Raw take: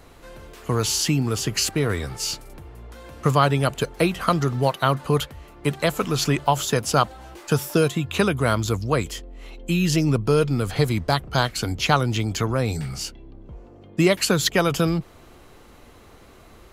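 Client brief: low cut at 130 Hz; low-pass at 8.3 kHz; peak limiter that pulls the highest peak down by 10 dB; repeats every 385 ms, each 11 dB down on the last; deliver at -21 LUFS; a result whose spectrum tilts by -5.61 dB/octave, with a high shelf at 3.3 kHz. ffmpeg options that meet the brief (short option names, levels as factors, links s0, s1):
-af "highpass=130,lowpass=8300,highshelf=f=3300:g=-8.5,alimiter=limit=0.211:level=0:latency=1,aecho=1:1:385|770|1155:0.282|0.0789|0.0221,volume=1.88"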